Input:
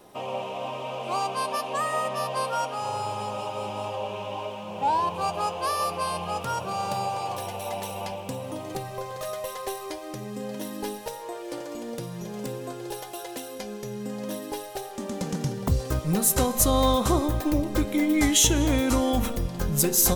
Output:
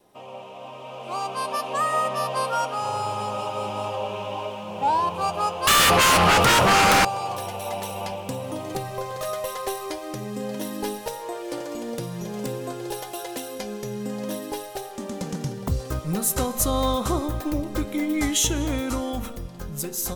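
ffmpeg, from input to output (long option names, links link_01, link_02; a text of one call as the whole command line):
ffmpeg -i in.wav -filter_complex "[0:a]asettb=1/sr,asplit=3[link_01][link_02][link_03];[link_01]atrim=end=5.674[link_04];[link_02]atrim=start=5.67:end=7.05,asetpts=PTS-STARTPTS,afade=type=in:duration=0.004:curve=qsin,afade=type=out:start_time=1.376:duration=0.004:curve=qsin,aeval=exprs='0.168*sin(PI/2*5.01*val(0)/0.168)':channel_layout=same[link_05];[link_03]atrim=start=7.046[link_06];[link_04][link_05]acrossfade=duration=0.004:curve1=hsin:curve2=qsin[link_07];[link_07][link_06]acrossfade=duration=0.004:curve1=qsin:curve2=hsin,adynamicequalizer=threshold=0.00398:dfrequency=1300:dqfactor=7.3:tfrequency=1300:tqfactor=7.3:attack=5:release=100:ratio=0.375:range=2.5:mode=boostabove:tftype=bell,dynaudnorm=framelen=120:gausssize=21:maxgain=11.5dB,volume=-8dB" out.wav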